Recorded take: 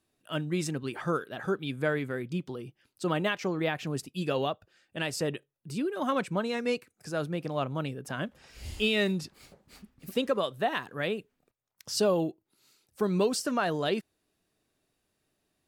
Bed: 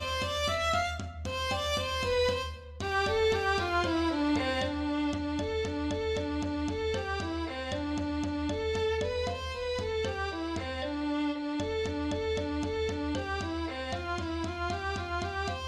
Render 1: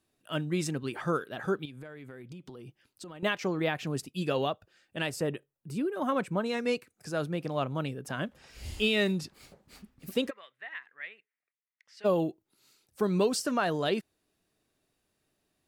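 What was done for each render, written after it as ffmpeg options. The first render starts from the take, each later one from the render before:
-filter_complex "[0:a]asettb=1/sr,asplit=3[a][b][c];[a]atrim=end=1.654[d];[b]atrim=start=1.65:end=3.23,asetpts=PTS-STARTPTS,afade=t=in:d=0.004:c=qsin,afade=t=out:st=1.576:d=0.004:c=qsin,acompressor=threshold=-41dB:ratio=16:attack=3.2:release=140:knee=1:detection=peak[e];[c]atrim=start=3.226[f];[d][e]acrossfade=d=0.004:c1=hsin:c2=qsin[g];[g][f]acrossfade=d=0.004:c1=qsin:c2=hsin,asettb=1/sr,asplit=3[h][i][j];[h]atrim=end=5.094[k];[i]atrim=start=5.09:end=6.46,asetpts=PTS-STARTPTS,afade=t=in:d=0.004:c=qsin,afade=t=out:st=1.366:d=0.004:c=qsin,equalizer=f=4.5k:w=0.68:g=-7[l];[j]atrim=start=6.456[m];[k][l]acrossfade=d=0.004:c1=hsin:c2=qsin[n];[n][m]acrossfade=d=0.004:c1=qsin:c2=hsin,asplit=3[o][p][q];[o]afade=t=out:st=10.29:d=0.02[r];[p]bandpass=f=2k:t=q:w=6.1,afade=t=in:st=10.29:d=0.02,afade=t=out:st=12.04:d=0.02[s];[q]afade=t=in:st=12.04:d=0.02[t];[r][s][t]amix=inputs=3:normalize=0"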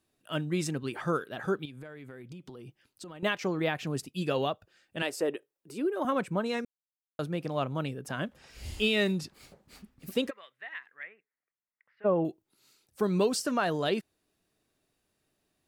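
-filter_complex "[0:a]asettb=1/sr,asplit=3[a][b][c];[a]atrim=end=5.024[d];[b]atrim=start=5.02:end=6.05,asetpts=PTS-STARTPTS,afade=t=in:d=0.004:c=qsin,afade=t=out:st=1.026:d=0.004:c=qsin,lowshelf=f=230:t=q:w=1.5:g=-13.5[e];[c]atrim=start=6.046[f];[d][e]acrossfade=d=0.004:c1=hsin:c2=qsin[g];[g][f]acrossfade=d=0.004:c1=qsin:c2=hsin,asettb=1/sr,asplit=3[h][i][j];[h]atrim=end=11.034[k];[i]atrim=start=11.03:end=12.25,asetpts=PTS-STARTPTS,afade=t=in:d=0.004:c=qsin,afade=t=out:st=1.216:d=0.004:c=qsin,lowpass=f=2k:w=0.5412,lowpass=f=2k:w=1.3066[l];[j]atrim=start=12.246[m];[k][l]acrossfade=d=0.004:c1=hsin:c2=qsin[n];[n][m]acrossfade=d=0.004:c1=qsin:c2=hsin,asplit=3[o][p][q];[o]atrim=end=6.65,asetpts=PTS-STARTPTS,afade=t=out:st=6.646:d=0.004:c=hsin[r];[p]atrim=start=6.65:end=7.19,asetpts=PTS-STARTPTS,volume=0[s];[q]atrim=start=7.19,asetpts=PTS-STARTPTS,afade=t=in:d=0.004:c=hsin[t];[r][s][t]concat=n=3:v=0:a=1"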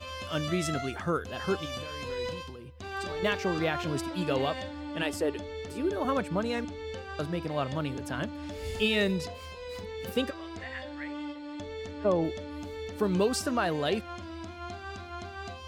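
-filter_complex "[1:a]volume=-7dB[a];[0:a][a]amix=inputs=2:normalize=0"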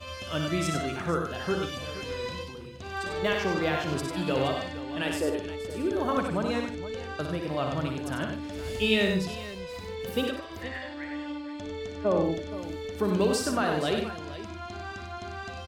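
-af "aecho=1:1:59|96|150|471:0.447|0.531|0.188|0.2"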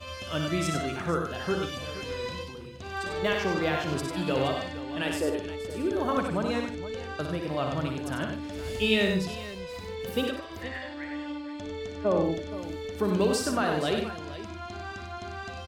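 -af anull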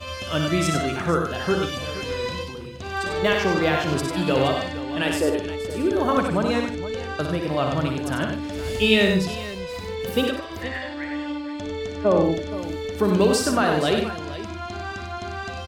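-af "volume=6.5dB"

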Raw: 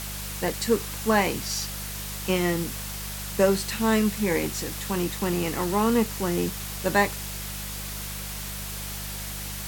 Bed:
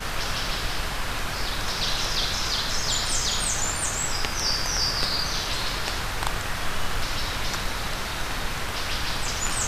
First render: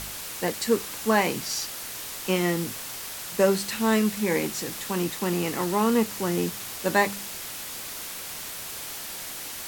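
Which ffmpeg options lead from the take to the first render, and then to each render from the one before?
-af "bandreject=f=50:t=h:w=4,bandreject=f=100:t=h:w=4,bandreject=f=150:t=h:w=4,bandreject=f=200:t=h:w=4"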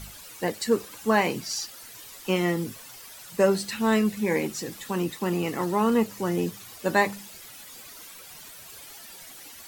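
-af "afftdn=nr=12:nf=-37"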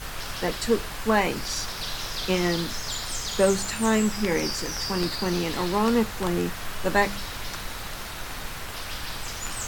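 -filter_complex "[1:a]volume=-6.5dB[a];[0:a][a]amix=inputs=2:normalize=0"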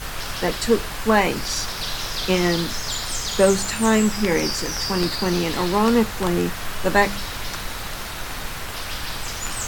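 -af "volume=4.5dB"

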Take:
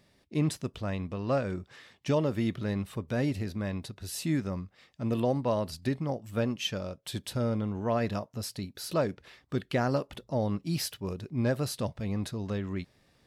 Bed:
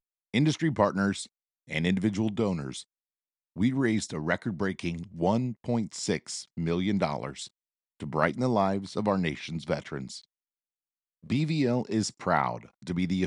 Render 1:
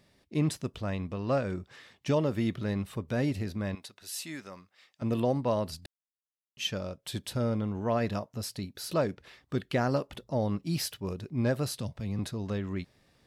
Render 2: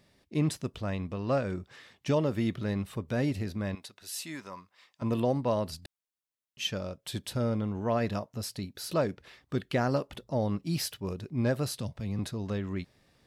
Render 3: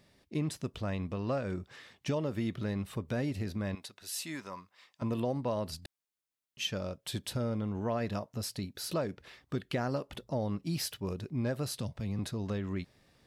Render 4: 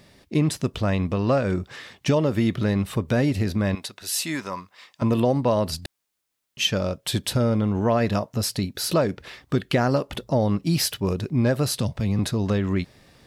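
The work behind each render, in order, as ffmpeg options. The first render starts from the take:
-filter_complex "[0:a]asettb=1/sr,asplit=3[a][b][c];[a]atrim=end=3.754[d];[b]atrim=start=3.75:end=5.02,asetpts=PTS-STARTPTS,afade=t=in:d=0.004:c=qsin,afade=t=out:st=1.266:d=0.004:c=qsin,highpass=f=1.2k:p=1[e];[c]atrim=start=5.016[f];[d][e]acrossfade=d=0.004:c1=hsin:c2=qsin[g];[g][f]acrossfade=d=0.004:c1=qsin:c2=hsin,asettb=1/sr,asplit=3[h][i][j];[h]atrim=end=11.714[k];[i]atrim=start=11.71:end=12.19,asetpts=PTS-STARTPTS,afade=t=in:d=0.004:c=qsin,afade=t=out:st=0.476:d=0.004:c=qsin,acrossover=split=230|3000[l][m][n];[m]acompressor=threshold=-46dB:ratio=2:attack=3.2:release=140:knee=2.83:detection=peak[o];[l][o][n]amix=inputs=3:normalize=0[p];[j]atrim=start=12.186[q];[k][p]acrossfade=d=0.004:c1=hsin:c2=qsin[r];[r][q]acrossfade=d=0.004:c1=qsin:c2=hsin,asplit=3[s][t][u];[s]atrim=end=5.86,asetpts=PTS-STARTPTS,afade=t=out:st=5.856:d=0.004:c=hsin[v];[t]atrim=start=5.86:end=6.57,asetpts=PTS-STARTPTS,volume=0[w];[u]atrim=start=6.57,asetpts=PTS-STARTPTS,afade=t=in:d=0.004:c=hsin[x];[v][w][x]concat=n=3:v=0:a=1"
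-filter_complex "[0:a]asettb=1/sr,asplit=3[a][b][c];[a]atrim=end=4.354[d];[b]atrim=start=4.35:end=5.15,asetpts=PTS-STARTPTS,afade=t=in:d=0.004:c=qsin,afade=t=out:st=0.796:d=0.004:c=qsin,equalizer=f=1k:w=7.1:g=12.5[e];[c]atrim=start=5.146[f];[d][e]acrossfade=d=0.004:c1=hsin:c2=qsin[g];[g][f]acrossfade=d=0.004:c1=qsin:c2=hsin"
-af "acompressor=threshold=-31dB:ratio=2.5"
-af "volume=12dB"

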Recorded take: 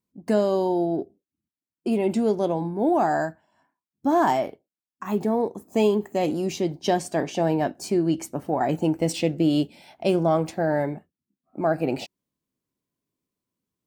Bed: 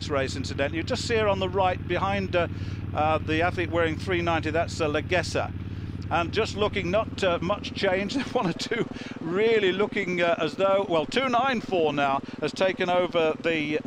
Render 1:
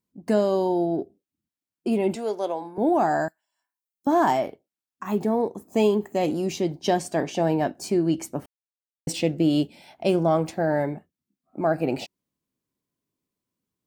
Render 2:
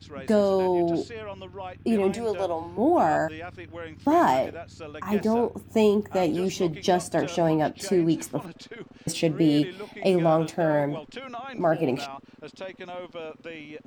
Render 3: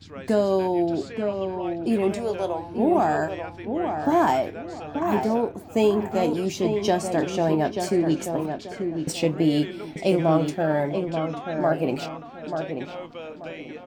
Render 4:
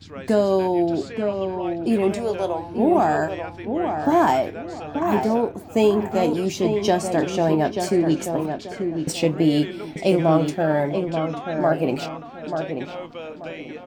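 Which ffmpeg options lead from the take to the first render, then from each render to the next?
-filter_complex "[0:a]asettb=1/sr,asplit=3[a][b][c];[a]atrim=end=2.154[d];[b]atrim=start=2.15:end=2.78,asetpts=PTS-STARTPTS,afade=t=in:d=0.004:c=qsin,afade=t=out:st=0.626:d=0.004:c=qsin,highpass=500[e];[c]atrim=start=2.776[f];[d][e]acrossfade=d=0.004:c1=hsin:c2=qsin[g];[g][f]acrossfade=d=0.004:c1=qsin:c2=hsin,asettb=1/sr,asplit=3[h][i][j];[h]atrim=end=3.284[k];[i]atrim=start=3.28:end=4.07,asetpts=PTS-STARTPTS,afade=t=in:d=0.004:c=qsin,afade=t=out:st=0.786:d=0.004:c=qsin,aderivative[l];[j]atrim=start=4.066[m];[k][l]acrossfade=d=0.004:c1=hsin:c2=qsin[n];[n][m]acrossfade=d=0.004:c1=qsin:c2=hsin,asplit=3[o][p][q];[o]atrim=end=8.46,asetpts=PTS-STARTPTS,afade=t=out:st=8.456:d=0.004:c=hsin[r];[p]atrim=start=8.46:end=9.07,asetpts=PTS-STARTPTS,volume=0[s];[q]atrim=start=9.07,asetpts=PTS-STARTPTS,afade=t=in:d=0.004:c=hsin[t];[r][s][t]concat=n=3:v=0:a=1"
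-filter_complex "[1:a]volume=-14dB[a];[0:a][a]amix=inputs=2:normalize=0"
-filter_complex "[0:a]asplit=2[a][b];[b]adelay=26,volume=-14dB[c];[a][c]amix=inputs=2:normalize=0,asplit=2[d][e];[e]adelay=885,lowpass=f=1.9k:p=1,volume=-6dB,asplit=2[f][g];[g]adelay=885,lowpass=f=1.9k:p=1,volume=0.3,asplit=2[h][i];[i]adelay=885,lowpass=f=1.9k:p=1,volume=0.3,asplit=2[j][k];[k]adelay=885,lowpass=f=1.9k:p=1,volume=0.3[l];[d][f][h][j][l]amix=inputs=5:normalize=0"
-af "volume=2.5dB"

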